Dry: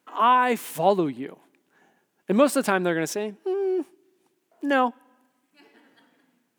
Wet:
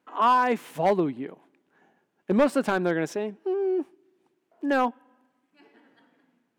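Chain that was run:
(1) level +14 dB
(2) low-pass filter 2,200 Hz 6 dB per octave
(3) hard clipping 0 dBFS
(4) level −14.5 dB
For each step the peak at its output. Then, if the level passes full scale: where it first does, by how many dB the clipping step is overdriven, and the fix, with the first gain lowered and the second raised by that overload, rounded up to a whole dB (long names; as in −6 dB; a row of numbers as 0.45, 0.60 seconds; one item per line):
+8.0, +7.5, 0.0, −14.5 dBFS
step 1, 7.5 dB
step 1 +6 dB, step 4 −6.5 dB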